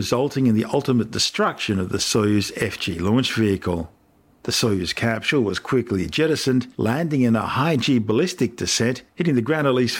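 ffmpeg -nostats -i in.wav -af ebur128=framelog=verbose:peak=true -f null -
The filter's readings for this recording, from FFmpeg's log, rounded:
Integrated loudness:
  I:         -21.0 LUFS
  Threshold: -31.2 LUFS
Loudness range:
  LRA:         1.7 LU
  Threshold: -41.4 LUFS
  LRA low:   -22.3 LUFS
  LRA high:  -20.6 LUFS
True peak:
  Peak:       -7.6 dBFS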